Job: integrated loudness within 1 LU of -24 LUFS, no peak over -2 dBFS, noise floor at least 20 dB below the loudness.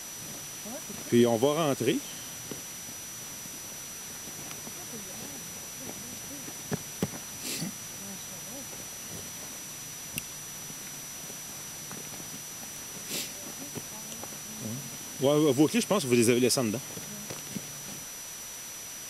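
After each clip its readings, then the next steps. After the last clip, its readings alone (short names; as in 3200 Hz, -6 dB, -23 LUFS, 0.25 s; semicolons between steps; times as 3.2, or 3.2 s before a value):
steady tone 5900 Hz; tone level -42 dBFS; noise floor -41 dBFS; noise floor target -52 dBFS; loudness -32.0 LUFS; peak -10.0 dBFS; loudness target -24.0 LUFS
-> notch 5900 Hz, Q 30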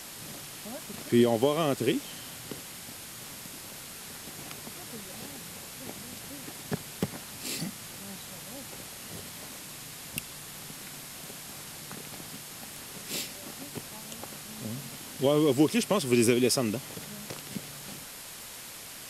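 steady tone none; noise floor -44 dBFS; noise floor target -53 dBFS
-> noise print and reduce 9 dB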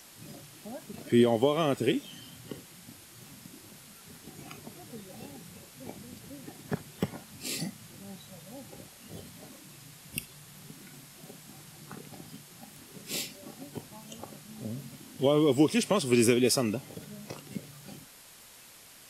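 noise floor -53 dBFS; loudness -29.0 LUFS; peak -10.5 dBFS; loudness target -24.0 LUFS
-> gain +5 dB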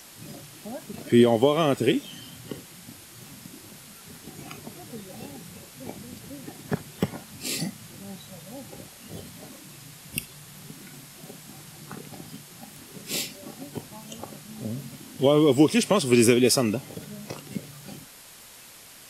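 loudness -24.0 LUFS; peak -5.5 dBFS; noise floor -48 dBFS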